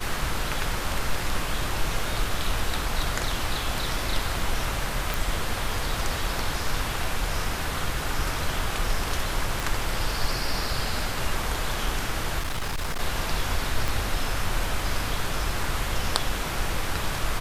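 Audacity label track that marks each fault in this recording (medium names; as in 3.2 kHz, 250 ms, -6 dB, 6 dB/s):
5.140000	5.140000	pop
9.600000	9.600000	pop
12.390000	13.010000	clipped -24.5 dBFS
13.880000	13.880000	pop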